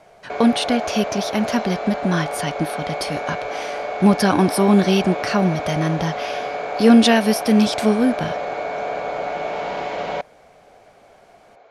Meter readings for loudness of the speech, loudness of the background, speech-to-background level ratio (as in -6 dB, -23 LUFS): -19.0 LUFS, -26.5 LUFS, 7.5 dB